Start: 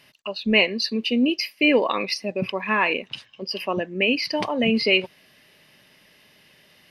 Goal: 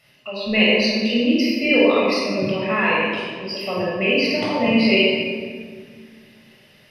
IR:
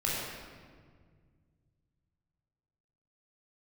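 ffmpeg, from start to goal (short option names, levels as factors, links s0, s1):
-filter_complex "[1:a]atrim=start_sample=2205[s0];[0:a][s0]afir=irnorm=-1:irlink=0,volume=0.562"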